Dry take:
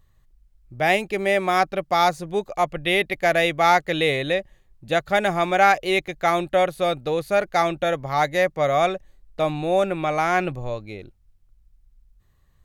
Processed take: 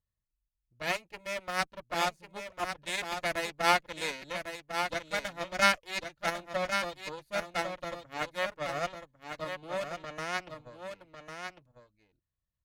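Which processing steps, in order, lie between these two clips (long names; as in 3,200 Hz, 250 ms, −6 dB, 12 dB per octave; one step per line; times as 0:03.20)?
harmonic generator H 3 −10 dB, 6 −29 dB, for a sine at −4 dBFS
notch comb filter 390 Hz
single-tap delay 1,100 ms −7 dB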